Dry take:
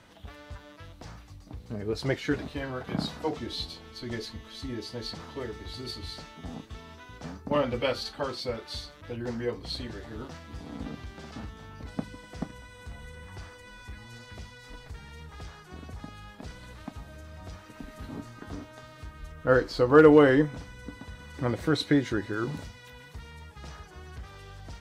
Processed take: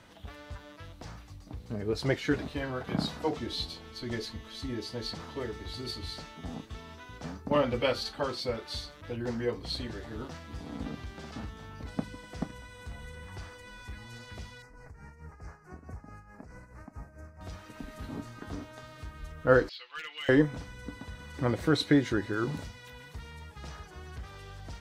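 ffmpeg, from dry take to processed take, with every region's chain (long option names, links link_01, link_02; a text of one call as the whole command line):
ffmpeg -i in.wav -filter_complex "[0:a]asettb=1/sr,asplit=3[link_01][link_02][link_03];[link_01]atrim=end=14.624[link_04];[link_02]atrim=start=14.62:end=17.41,asetpts=PTS-STARTPTS,afade=type=in:duration=0.004:curve=qsin,afade=type=out:start_time=2.786:duration=0.004:curve=qsin,asuperstop=centerf=3400:order=4:qfactor=0.96,highshelf=frequency=7000:gain=-9.5,tremolo=f=4.6:d=0.71[link_05];[link_03]atrim=start=17.406[link_06];[link_04][link_05]acrossfade=duration=0.004:curve1=hsin:curve2=qsin[link_07];[link_07][link_06]acrossfade=duration=0.004:curve1=qsin:curve2=hsin,asettb=1/sr,asplit=3[link_08][link_09][link_10];[link_08]atrim=end=19.694[link_11];[link_09]atrim=start=19.69:end=20.29,asetpts=PTS-STARTPTS,afade=type=in:duration=0.004:curve=qsin,afade=type=out:start_time=0.596:duration=0.004:curve=qsin,asuperpass=centerf=3000:order=4:qfactor=1.7,volume=34.5dB,asoftclip=hard,volume=-34.5dB,aecho=1:1:5.9:0.51,atrim=end_sample=26460[link_12];[link_10]atrim=start=20.286[link_13];[link_11][link_12]acrossfade=duration=0.004:curve1=hsin:curve2=qsin[link_14];[link_14][link_13]acrossfade=duration=0.004:curve1=qsin:curve2=hsin" out.wav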